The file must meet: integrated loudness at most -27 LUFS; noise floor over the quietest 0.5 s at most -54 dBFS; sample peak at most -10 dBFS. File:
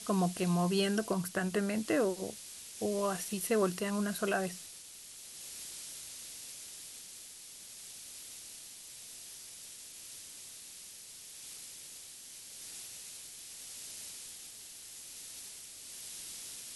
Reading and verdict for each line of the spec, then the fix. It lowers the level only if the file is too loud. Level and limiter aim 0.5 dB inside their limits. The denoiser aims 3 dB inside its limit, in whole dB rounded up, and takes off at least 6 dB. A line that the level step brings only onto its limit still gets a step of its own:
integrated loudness -38.0 LUFS: OK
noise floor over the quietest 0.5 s -51 dBFS: fail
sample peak -17.0 dBFS: OK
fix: denoiser 6 dB, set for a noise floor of -51 dBFS

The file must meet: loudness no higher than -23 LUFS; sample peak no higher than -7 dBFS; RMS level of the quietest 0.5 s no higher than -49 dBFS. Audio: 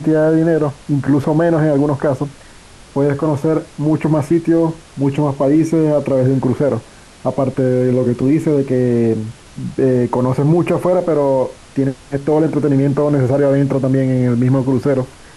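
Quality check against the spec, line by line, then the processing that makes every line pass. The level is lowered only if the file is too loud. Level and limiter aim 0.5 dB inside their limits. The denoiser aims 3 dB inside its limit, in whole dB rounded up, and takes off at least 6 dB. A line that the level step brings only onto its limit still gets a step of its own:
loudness -15.5 LUFS: fail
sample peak -5.0 dBFS: fail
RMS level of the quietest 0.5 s -40 dBFS: fail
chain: denoiser 6 dB, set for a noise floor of -40 dBFS; gain -8 dB

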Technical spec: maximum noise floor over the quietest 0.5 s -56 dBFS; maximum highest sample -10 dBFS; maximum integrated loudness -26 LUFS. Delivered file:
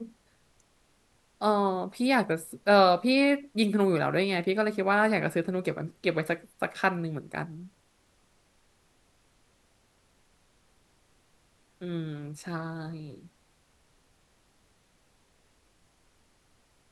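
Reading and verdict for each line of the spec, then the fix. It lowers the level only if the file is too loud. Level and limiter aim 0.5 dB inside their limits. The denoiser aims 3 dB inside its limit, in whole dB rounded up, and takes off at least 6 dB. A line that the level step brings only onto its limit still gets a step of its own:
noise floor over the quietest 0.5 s -66 dBFS: OK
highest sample -7.5 dBFS: fail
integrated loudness -27.5 LUFS: OK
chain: limiter -10.5 dBFS

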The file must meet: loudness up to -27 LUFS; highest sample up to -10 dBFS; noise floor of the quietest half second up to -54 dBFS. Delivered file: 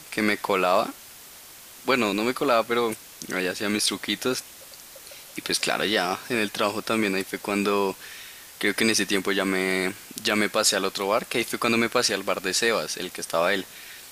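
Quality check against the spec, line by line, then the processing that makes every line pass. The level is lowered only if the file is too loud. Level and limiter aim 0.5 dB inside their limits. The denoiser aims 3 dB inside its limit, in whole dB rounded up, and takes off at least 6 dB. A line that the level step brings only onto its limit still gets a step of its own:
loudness -24.5 LUFS: fail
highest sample -5.5 dBFS: fail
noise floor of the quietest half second -46 dBFS: fail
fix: denoiser 8 dB, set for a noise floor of -46 dBFS; gain -3 dB; limiter -10.5 dBFS

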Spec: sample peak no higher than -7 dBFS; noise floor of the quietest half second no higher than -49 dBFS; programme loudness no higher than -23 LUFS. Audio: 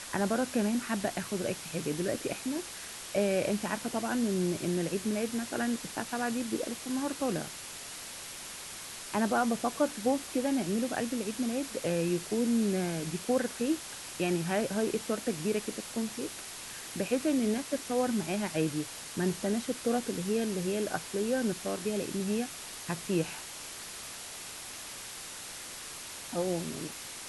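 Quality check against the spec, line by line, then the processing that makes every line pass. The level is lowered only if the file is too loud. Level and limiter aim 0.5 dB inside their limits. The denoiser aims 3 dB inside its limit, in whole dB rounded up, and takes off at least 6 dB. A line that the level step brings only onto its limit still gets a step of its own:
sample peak -16.0 dBFS: OK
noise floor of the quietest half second -43 dBFS: fail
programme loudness -32.5 LUFS: OK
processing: denoiser 9 dB, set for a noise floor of -43 dBFS

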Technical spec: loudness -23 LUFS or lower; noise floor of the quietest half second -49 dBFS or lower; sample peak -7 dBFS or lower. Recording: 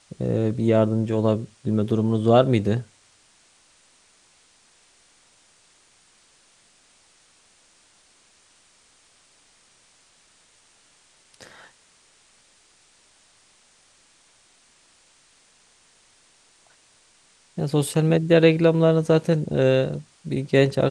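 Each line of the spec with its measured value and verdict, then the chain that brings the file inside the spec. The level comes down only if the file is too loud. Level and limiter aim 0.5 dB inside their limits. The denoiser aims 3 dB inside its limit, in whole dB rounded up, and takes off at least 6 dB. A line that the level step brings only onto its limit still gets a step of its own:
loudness -21.0 LUFS: fail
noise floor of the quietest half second -59 dBFS: OK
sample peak -3.5 dBFS: fail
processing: gain -2.5 dB; limiter -7.5 dBFS

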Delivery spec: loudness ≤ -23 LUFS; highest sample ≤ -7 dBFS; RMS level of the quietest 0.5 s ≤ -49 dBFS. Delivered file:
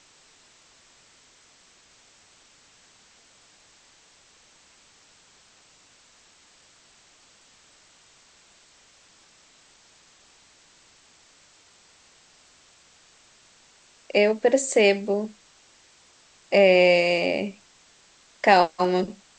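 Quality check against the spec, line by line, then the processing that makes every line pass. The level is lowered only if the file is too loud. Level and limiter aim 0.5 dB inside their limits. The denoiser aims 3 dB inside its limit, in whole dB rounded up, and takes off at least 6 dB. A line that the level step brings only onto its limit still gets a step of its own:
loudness -21.0 LUFS: fail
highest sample -3.0 dBFS: fail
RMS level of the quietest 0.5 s -57 dBFS: OK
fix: gain -2.5 dB; limiter -7.5 dBFS

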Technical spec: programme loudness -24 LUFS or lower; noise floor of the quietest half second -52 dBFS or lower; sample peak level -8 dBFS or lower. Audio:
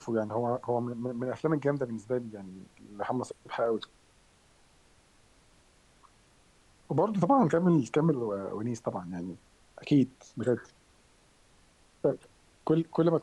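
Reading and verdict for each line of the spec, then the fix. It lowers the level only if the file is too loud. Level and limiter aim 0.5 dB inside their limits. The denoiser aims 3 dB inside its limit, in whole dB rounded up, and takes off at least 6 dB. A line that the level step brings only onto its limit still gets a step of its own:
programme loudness -30.0 LUFS: OK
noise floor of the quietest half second -63 dBFS: OK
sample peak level -12.5 dBFS: OK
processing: none

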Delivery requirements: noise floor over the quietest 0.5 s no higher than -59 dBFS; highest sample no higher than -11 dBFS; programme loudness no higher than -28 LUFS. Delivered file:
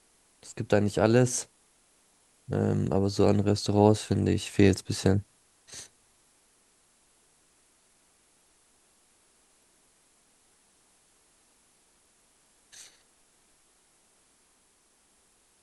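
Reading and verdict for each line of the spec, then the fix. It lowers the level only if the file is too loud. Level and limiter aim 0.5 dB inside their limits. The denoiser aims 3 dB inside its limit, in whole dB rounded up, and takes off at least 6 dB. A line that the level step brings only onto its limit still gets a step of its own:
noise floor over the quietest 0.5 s -66 dBFS: OK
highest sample -5.5 dBFS: fail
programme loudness -25.5 LUFS: fail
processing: gain -3 dB; limiter -11.5 dBFS

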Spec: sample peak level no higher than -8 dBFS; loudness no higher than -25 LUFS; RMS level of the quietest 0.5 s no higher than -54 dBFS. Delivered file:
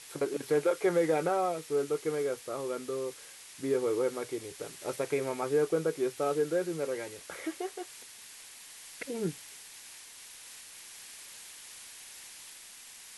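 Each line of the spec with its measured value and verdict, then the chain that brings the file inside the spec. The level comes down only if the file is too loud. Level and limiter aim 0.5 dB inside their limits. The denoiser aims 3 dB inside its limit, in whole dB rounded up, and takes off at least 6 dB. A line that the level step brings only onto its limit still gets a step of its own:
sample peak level -16.5 dBFS: OK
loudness -32.5 LUFS: OK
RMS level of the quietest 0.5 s -50 dBFS: fail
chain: denoiser 7 dB, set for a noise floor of -50 dBFS

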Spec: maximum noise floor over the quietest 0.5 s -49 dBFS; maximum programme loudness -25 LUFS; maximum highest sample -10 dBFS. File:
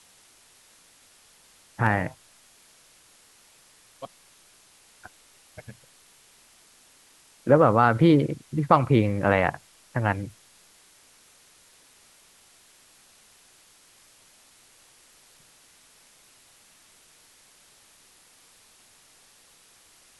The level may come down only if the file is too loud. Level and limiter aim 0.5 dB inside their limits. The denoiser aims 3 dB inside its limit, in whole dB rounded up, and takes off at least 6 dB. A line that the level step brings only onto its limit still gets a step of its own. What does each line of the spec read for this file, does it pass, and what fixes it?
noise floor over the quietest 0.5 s -57 dBFS: OK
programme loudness -22.5 LUFS: fail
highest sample -3.5 dBFS: fail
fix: gain -3 dB; limiter -10.5 dBFS

